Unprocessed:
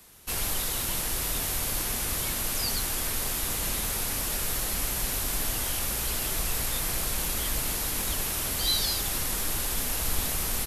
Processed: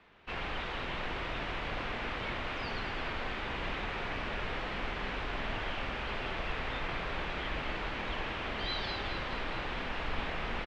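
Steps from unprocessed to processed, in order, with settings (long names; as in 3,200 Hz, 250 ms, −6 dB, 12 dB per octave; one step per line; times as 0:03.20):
low-pass filter 2,800 Hz 24 dB per octave
low-shelf EQ 270 Hz −8.5 dB
double-tracking delay 47 ms −10.5 dB
on a send: delay that swaps between a low-pass and a high-pass 106 ms, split 830 Hz, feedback 80%, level −7 dB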